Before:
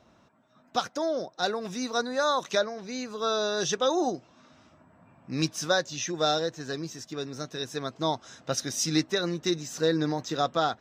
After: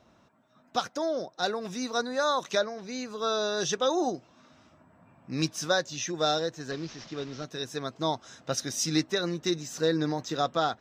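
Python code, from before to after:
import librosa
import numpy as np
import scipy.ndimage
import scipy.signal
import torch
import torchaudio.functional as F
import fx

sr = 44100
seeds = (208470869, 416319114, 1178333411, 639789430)

y = fx.delta_mod(x, sr, bps=32000, step_db=-41.0, at=(6.71, 7.45))
y = y * librosa.db_to_amplitude(-1.0)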